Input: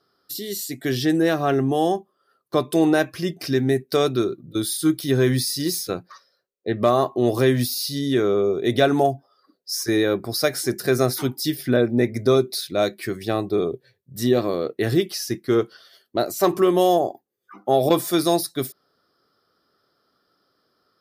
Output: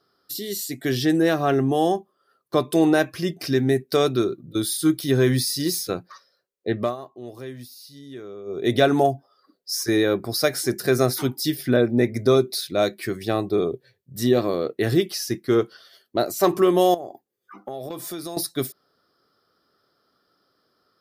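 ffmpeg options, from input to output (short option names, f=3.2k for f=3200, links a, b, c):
-filter_complex "[0:a]asettb=1/sr,asplit=3[a][b][c];[a]atrim=end=16.944[d];[b]atrim=start=16.94:end=18.37,asetpts=PTS-STARTPTS,afade=t=in:d=0.004:c=qsin,afade=t=out:st=1.426:d=0.004:c=qsin,acompressor=threshold=-30dB:ratio=6:attack=3.2:release=140:knee=1:detection=peak[e];[c]atrim=start=18.366[f];[d][e]acrossfade=d=0.004:c1=hsin:c2=qsin[g];[g][f]acrossfade=d=0.004:c1=qsin:c2=hsin,asplit=3[h][i][j];[h]atrim=end=6.96,asetpts=PTS-STARTPTS,afade=t=out:st=6.74:d=0.22:silence=0.125893[k];[i]atrim=start=6.96:end=8.45,asetpts=PTS-STARTPTS,volume=-18dB[l];[j]atrim=start=8.45,asetpts=PTS-STARTPTS,afade=t=in:d=0.22:silence=0.125893[m];[k][l][m]concat=n=3:v=0:a=1"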